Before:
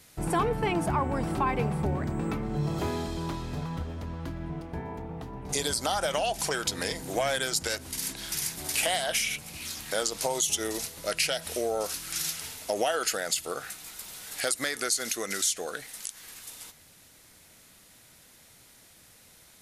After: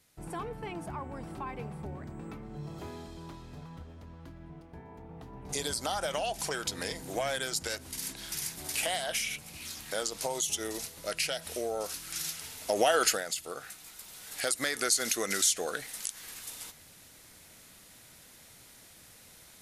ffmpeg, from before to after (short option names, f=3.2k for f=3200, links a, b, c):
-af "volume=11dB,afade=t=in:st=4.88:d=0.73:silence=0.421697,afade=t=in:st=12.49:d=0.54:silence=0.375837,afade=t=out:st=13.03:d=0.22:silence=0.316228,afade=t=in:st=14.08:d=0.91:silence=0.446684"